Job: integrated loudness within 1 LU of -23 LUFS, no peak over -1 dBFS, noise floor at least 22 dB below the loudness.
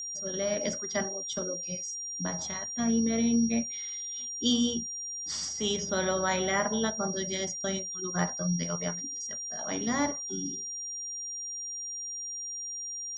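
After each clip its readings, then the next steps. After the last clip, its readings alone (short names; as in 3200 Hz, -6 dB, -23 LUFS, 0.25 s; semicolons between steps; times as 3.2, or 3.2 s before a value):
steady tone 5700 Hz; tone level -35 dBFS; loudness -31.0 LUFS; peak -14.0 dBFS; loudness target -23.0 LUFS
-> notch 5700 Hz, Q 30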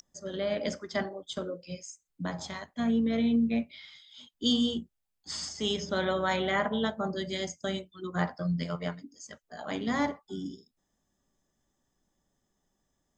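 steady tone none; loudness -31.5 LUFS; peak -14.5 dBFS; loudness target -23.0 LUFS
-> gain +8.5 dB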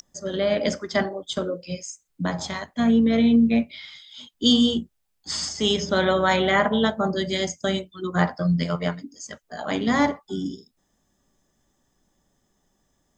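loudness -23.0 LUFS; peak -6.0 dBFS; noise floor -72 dBFS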